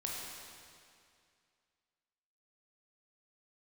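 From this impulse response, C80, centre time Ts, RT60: 0.5 dB, 0.128 s, 2.3 s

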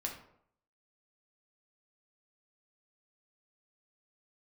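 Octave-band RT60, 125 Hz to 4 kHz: 0.70, 0.65, 0.70, 0.65, 0.50, 0.40 s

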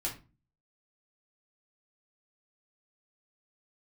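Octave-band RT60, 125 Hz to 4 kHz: 0.60, 0.55, 0.35, 0.30, 0.25, 0.25 s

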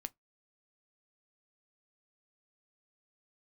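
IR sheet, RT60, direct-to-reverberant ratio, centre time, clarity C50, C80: 0.15 s, 12.0 dB, 2 ms, 31.5 dB, 45.0 dB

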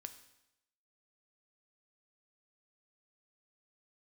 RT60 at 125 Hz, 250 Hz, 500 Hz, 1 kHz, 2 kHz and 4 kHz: 0.90, 0.85, 0.90, 0.85, 0.85, 0.85 s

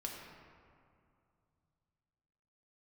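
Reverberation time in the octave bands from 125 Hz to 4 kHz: 3.8, 2.9, 2.4, 2.4, 1.9, 1.2 s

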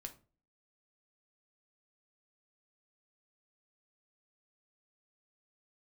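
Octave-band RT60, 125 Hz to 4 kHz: 0.50, 0.50, 0.40, 0.30, 0.25, 0.25 s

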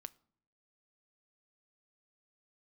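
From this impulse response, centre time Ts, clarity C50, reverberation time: 1 ms, 23.5 dB, 0.65 s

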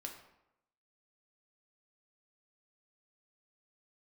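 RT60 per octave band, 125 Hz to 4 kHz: 0.80, 0.85, 0.85, 0.85, 0.70, 0.55 s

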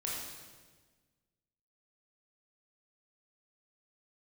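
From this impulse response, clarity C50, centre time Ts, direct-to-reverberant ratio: 0.0 dB, 82 ms, -5.0 dB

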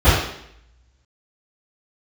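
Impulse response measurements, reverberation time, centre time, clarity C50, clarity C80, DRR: 0.70 s, 63 ms, 0.0 dB, 4.0 dB, -19.0 dB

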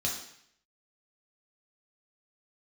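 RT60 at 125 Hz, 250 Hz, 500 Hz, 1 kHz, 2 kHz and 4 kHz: 0.75, 0.65, 0.65, 0.70, 0.75, 0.70 s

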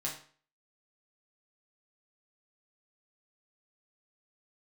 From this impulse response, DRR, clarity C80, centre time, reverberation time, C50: -4.0 dB, 11.5 dB, 27 ms, 0.45 s, 7.0 dB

